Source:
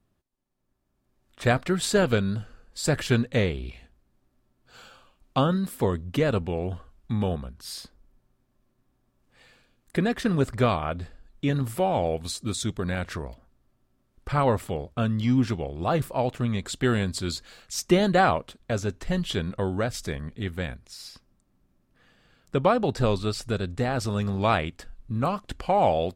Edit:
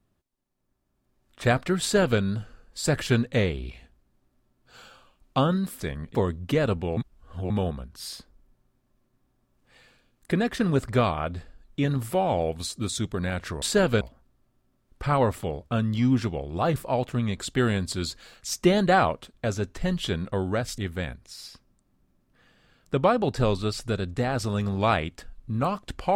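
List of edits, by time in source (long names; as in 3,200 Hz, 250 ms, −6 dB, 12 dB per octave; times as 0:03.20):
0:01.81–0:02.20: duplicate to 0:13.27
0:06.62–0:07.15: reverse
0:20.04–0:20.39: move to 0:05.80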